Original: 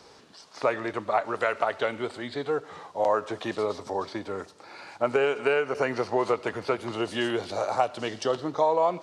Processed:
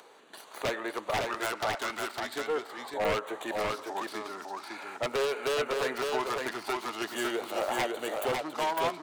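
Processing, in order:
stylus tracing distortion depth 0.34 ms
noise gate with hold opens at −41 dBFS
high-pass filter 370 Hz 12 dB per octave
upward compression, threshold −35 dBFS
auto-filter notch square 0.42 Hz 500–5,200 Hz
wave folding −21.5 dBFS
single-tap delay 555 ms −3.5 dB
level −1.5 dB

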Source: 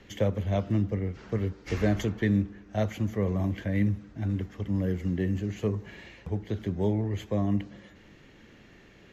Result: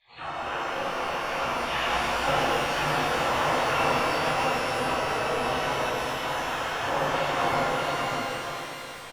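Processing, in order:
hearing-aid frequency compression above 1,200 Hz 4 to 1
high-pass filter 120 Hz 12 dB per octave
treble cut that deepens with the level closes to 400 Hz, closed at −23.5 dBFS
dynamic equaliser 770 Hz, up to −5 dB, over −54 dBFS, Q 3.2
pitch-shifted copies added +5 semitones −16 dB, +12 semitones −3 dB
automatic gain control gain up to 5 dB
on a send: repeating echo 61 ms, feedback 53%, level −16 dB
on the sum: gate on every frequency bin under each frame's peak −20 dB weak
high-frequency loss of the air 130 metres
single-tap delay 596 ms −3.5 dB
reverb with rising layers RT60 3.5 s, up +12 semitones, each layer −8 dB, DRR −12 dB
level +3 dB

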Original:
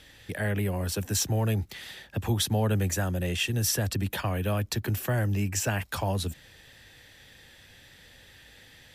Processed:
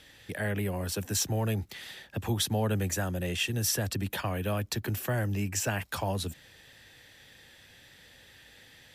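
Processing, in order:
low-shelf EQ 69 Hz −8.5 dB
level −1.5 dB

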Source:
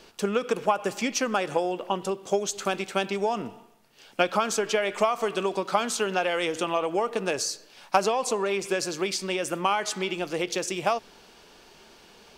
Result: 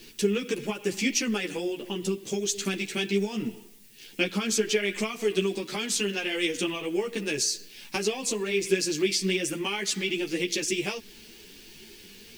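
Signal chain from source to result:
background noise blue −61 dBFS
in parallel at −2 dB: downward compressor, threshold −31 dBFS, peak gain reduction 15 dB
on the sum: flat-topped bell 870 Hz −16 dB
string-ensemble chorus
level +3 dB

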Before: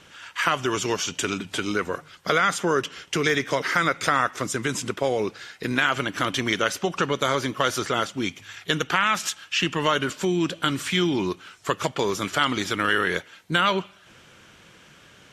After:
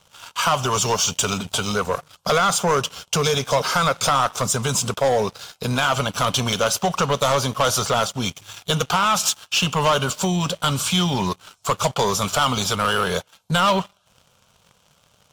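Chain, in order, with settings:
phaser with its sweep stopped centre 780 Hz, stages 4
leveller curve on the samples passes 3

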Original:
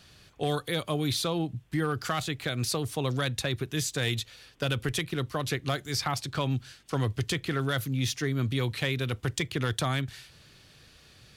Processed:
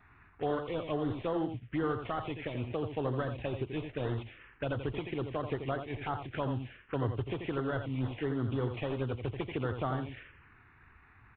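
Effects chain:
variable-slope delta modulation 16 kbit/s
parametric band 160 Hz −9 dB 0.9 octaves
single-tap delay 85 ms −7.5 dB
phaser swept by the level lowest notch 510 Hz, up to 2,400 Hz, full sweep at −28 dBFS

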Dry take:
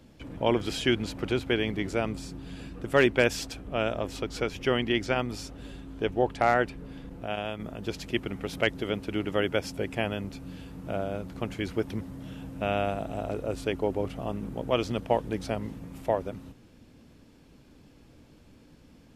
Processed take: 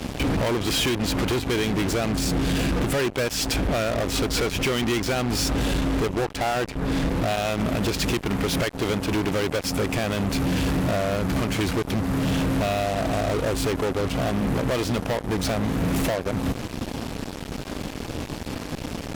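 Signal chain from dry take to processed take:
downward compressor 8 to 1, threshold −40 dBFS, peak gain reduction 22.5 dB
fuzz pedal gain 51 dB, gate −55 dBFS
level −7 dB

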